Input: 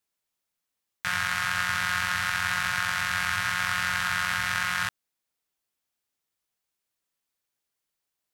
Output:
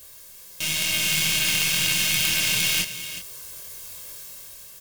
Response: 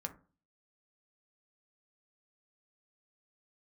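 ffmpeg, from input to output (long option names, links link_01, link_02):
-filter_complex "[0:a]aeval=exprs='val(0)+0.5*0.0178*sgn(val(0))':channel_layout=same,lowshelf=frequency=220:gain=8.5,aecho=1:1:3.2:0.7,asplit=2[link_01][link_02];[link_02]acrusher=bits=4:mix=0:aa=0.000001,volume=-5.5dB[link_03];[link_01][link_03]amix=inputs=2:normalize=0,asetrate=76440,aresample=44100,flanger=delay=22.5:depth=2.3:speed=2.1,dynaudnorm=framelen=240:gausssize=7:maxgain=6.5dB,aecho=1:1:373:0.237,aeval=exprs='0.596*(cos(1*acos(clip(val(0)/0.596,-1,1)))-cos(1*PI/2))+0.266*(cos(4*acos(clip(val(0)/0.596,-1,1)))-cos(4*PI/2))+0.211*(cos(6*acos(clip(val(0)/0.596,-1,1)))-cos(6*PI/2))':channel_layout=same,highshelf=frequency=4500:gain=11,volume=-8.5dB"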